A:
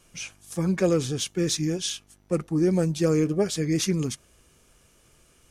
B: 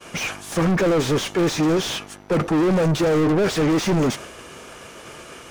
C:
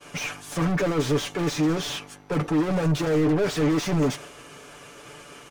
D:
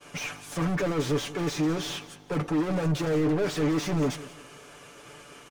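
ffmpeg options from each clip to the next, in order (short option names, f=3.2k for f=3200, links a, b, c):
-filter_complex "[0:a]asplit=2[a][b];[b]highpass=f=720:p=1,volume=39dB,asoftclip=type=tanh:threshold=-11dB[c];[a][c]amix=inputs=2:normalize=0,lowpass=f=1.3k:p=1,volume=-6dB,agate=range=-33dB:threshold=-33dB:ratio=3:detection=peak,volume=15.5dB,asoftclip=hard,volume=-15.5dB"
-af "aecho=1:1:6.9:0.65,volume=-6dB"
-af "aecho=1:1:180|360|540:0.126|0.0441|0.0154,volume=-3.5dB"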